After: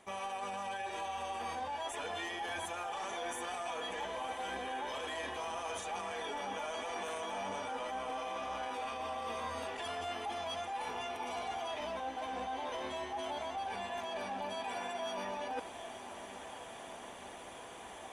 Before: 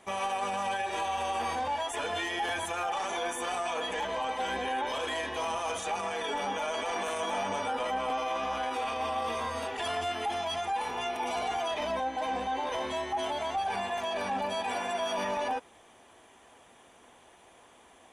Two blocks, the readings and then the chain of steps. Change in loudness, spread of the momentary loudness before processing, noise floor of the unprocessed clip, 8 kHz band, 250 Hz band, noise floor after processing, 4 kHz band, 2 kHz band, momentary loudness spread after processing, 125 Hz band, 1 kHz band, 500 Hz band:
-8.0 dB, 1 LU, -58 dBFS, -6.5 dB, -7.0 dB, -49 dBFS, -7.0 dB, -7.0 dB, 8 LU, -7.0 dB, -7.5 dB, -7.0 dB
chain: reverse; compression 5:1, threshold -46 dBFS, peak gain reduction 16 dB; reverse; echo that smears into a reverb 1010 ms, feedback 69%, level -12 dB; trim +6.5 dB

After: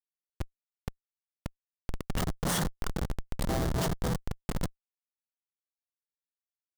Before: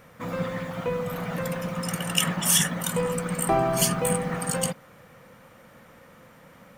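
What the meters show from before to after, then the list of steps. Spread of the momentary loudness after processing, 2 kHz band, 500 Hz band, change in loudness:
16 LU, -10.5 dB, -11.5 dB, -8.5 dB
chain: mains buzz 400 Hz, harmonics 32, -47 dBFS -2 dB/octave; Schmitt trigger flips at -19 dBFS; dynamic bell 2.5 kHz, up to -8 dB, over -53 dBFS, Q 2.7

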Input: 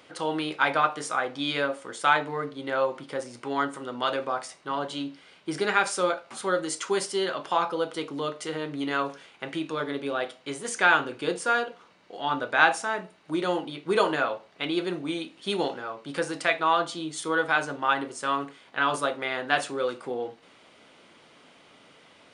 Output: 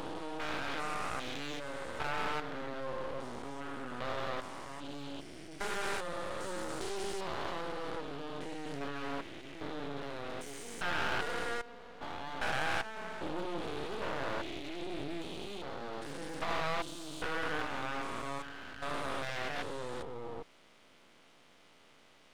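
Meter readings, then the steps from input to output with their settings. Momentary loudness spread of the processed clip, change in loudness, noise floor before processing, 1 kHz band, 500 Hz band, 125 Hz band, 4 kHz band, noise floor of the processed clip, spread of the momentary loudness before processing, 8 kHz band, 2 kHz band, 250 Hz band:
9 LU, -11.5 dB, -56 dBFS, -12.0 dB, -11.5 dB, -5.5 dB, -9.5 dB, -61 dBFS, 11 LU, -11.5 dB, -12.0 dB, -10.5 dB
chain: spectrogram pixelated in time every 400 ms; half-wave rectifier; loudspeaker Doppler distortion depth 0.19 ms; trim -1.5 dB

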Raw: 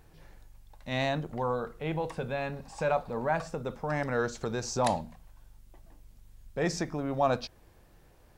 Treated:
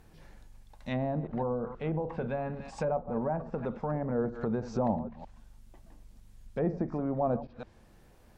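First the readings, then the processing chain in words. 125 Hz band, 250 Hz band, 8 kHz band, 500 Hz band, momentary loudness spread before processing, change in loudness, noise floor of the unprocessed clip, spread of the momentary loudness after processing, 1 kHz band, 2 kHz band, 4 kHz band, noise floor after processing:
+0.5 dB, +2.5 dB, under -15 dB, -1.0 dB, 7 LU, -1.5 dB, -59 dBFS, 12 LU, -4.5 dB, -10.5 dB, under -10 dB, -58 dBFS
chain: chunks repeated in reverse 159 ms, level -14 dB; low-pass that closes with the level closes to 650 Hz, closed at -27 dBFS; peaking EQ 220 Hz +7.5 dB 0.32 oct

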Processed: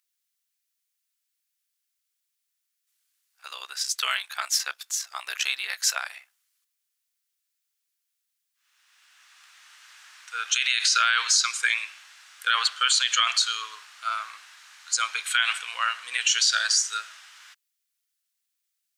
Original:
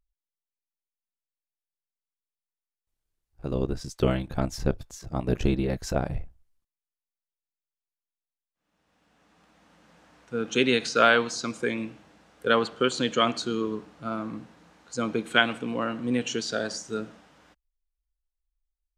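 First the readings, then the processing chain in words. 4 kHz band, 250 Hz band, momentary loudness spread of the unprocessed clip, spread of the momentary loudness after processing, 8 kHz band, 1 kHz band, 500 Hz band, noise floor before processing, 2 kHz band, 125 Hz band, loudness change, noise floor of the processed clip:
+8.5 dB, under -40 dB, 12 LU, 14 LU, +14.5 dB, +0.5 dB, -24.5 dB, under -85 dBFS, +3.5 dB, under -40 dB, +3.5 dB, -80 dBFS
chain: high-pass 1.3 kHz 24 dB/octave; treble shelf 2.4 kHz +8.5 dB; peak limiter -18.5 dBFS, peak gain reduction 15.5 dB; trim +8.5 dB

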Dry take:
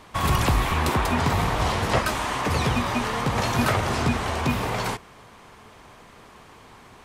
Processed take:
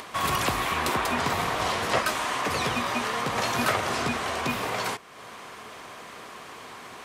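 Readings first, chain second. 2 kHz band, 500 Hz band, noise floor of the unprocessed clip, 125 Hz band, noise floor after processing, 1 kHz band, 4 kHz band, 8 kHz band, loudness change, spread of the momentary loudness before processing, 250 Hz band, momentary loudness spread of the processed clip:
0.0 dB, -2.5 dB, -49 dBFS, -11.5 dB, -44 dBFS, -1.5 dB, 0.0 dB, 0.0 dB, -2.5 dB, 4 LU, -6.0 dB, 17 LU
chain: high-pass 420 Hz 6 dB/octave; band-stop 870 Hz, Q 12; upward compressor, threshold -33 dBFS

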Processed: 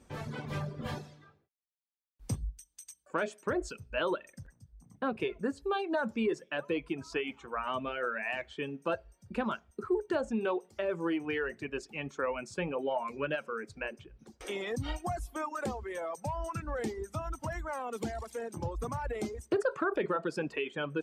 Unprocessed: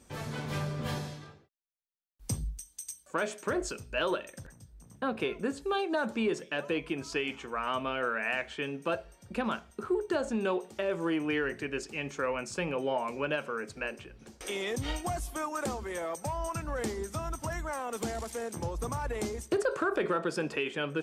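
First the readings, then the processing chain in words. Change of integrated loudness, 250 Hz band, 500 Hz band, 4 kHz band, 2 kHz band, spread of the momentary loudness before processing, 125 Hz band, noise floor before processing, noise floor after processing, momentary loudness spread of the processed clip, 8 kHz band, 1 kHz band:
-2.0 dB, -1.5 dB, -1.5 dB, -5.0 dB, -2.5 dB, 8 LU, -2.0 dB, -61 dBFS, -74 dBFS, 8 LU, -8.0 dB, -1.5 dB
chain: reverb removal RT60 1.3 s; treble shelf 3.7 kHz -9 dB

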